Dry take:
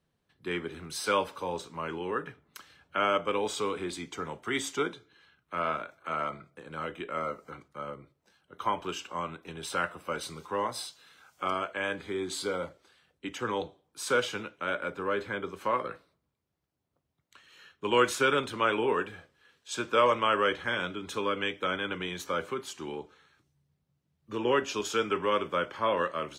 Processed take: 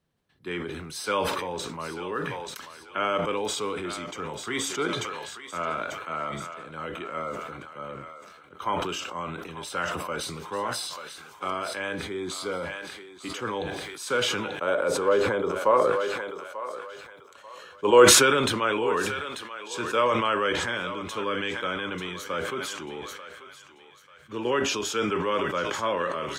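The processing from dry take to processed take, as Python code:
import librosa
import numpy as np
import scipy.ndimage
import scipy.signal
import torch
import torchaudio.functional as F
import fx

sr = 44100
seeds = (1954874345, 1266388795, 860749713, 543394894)

y = fx.graphic_eq(x, sr, hz=(500, 1000, 2000, 8000), db=(10, 5, -3, 5), at=(14.6, 18.06))
y = fx.echo_thinned(y, sr, ms=889, feedback_pct=40, hz=730.0, wet_db=-11.5)
y = fx.sustainer(y, sr, db_per_s=30.0)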